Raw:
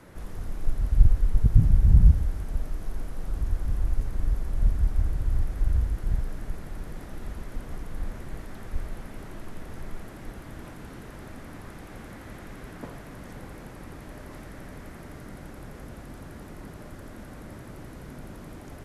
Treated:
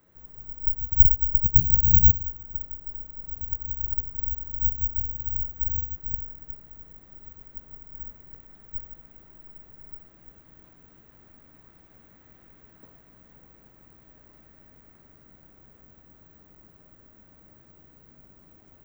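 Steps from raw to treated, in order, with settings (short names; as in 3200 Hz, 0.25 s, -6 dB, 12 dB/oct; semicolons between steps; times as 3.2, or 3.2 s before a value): treble ducked by the level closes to 1500 Hz, closed at -14.5 dBFS; careless resampling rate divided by 2×, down filtered, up zero stuff; upward expander 1.5:1, over -30 dBFS; gain -3.5 dB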